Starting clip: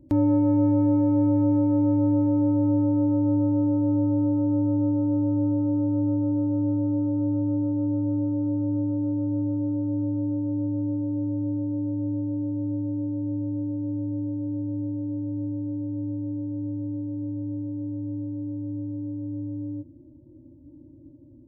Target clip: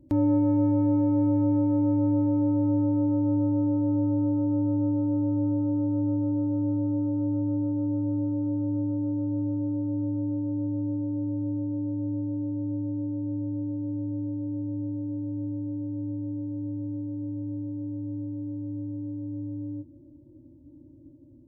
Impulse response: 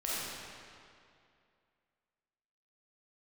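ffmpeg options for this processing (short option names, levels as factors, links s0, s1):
-filter_complex "[0:a]asplit=2[s0][s1];[1:a]atrim=start_sample=2205,adelay=30[s2];[s1][s2]afir=irnorm=-1:irlink=0,volume=0.075[s3];[s0][s3]amix=inputs=2:normalize=0,volume=0.75"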